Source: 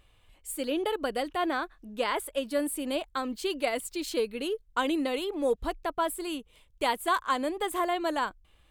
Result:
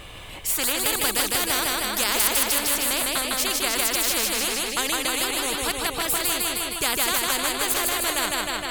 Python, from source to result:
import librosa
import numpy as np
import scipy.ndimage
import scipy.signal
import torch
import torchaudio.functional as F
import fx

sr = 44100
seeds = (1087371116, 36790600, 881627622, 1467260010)

y = fx.bass_treble(x, sr, bass_db=4, treble_db=12, at=(0.84, 2.51))
y = fx.echo_feedback(y, sr, ms=155, feedback_pct=52, wet_db=-4.0)
y = fx.spectral_comp(y, sr, ratio=4.0)
y = F.gain(torch.from_numpy(y), 6.5).numpy()